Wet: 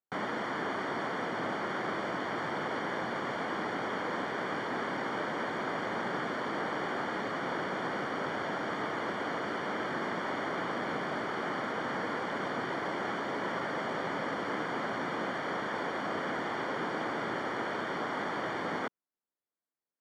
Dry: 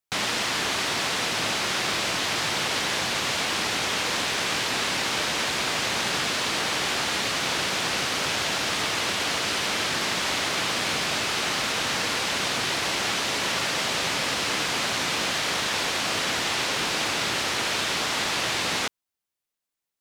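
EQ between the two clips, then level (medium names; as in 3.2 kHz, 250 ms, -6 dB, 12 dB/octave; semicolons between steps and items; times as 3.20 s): Savitzky-Golay filter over 41 samples; high-pass 220 Hz 12 dB/octave; bass shelf 410 Hz +8 dB; -5.5 dB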